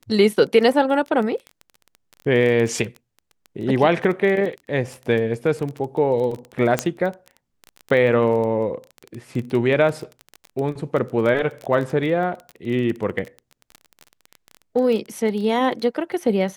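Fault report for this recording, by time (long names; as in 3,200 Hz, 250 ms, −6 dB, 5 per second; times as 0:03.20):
surface crackle 18 per second −27 dBFS
0:06.79: click −4 dBFS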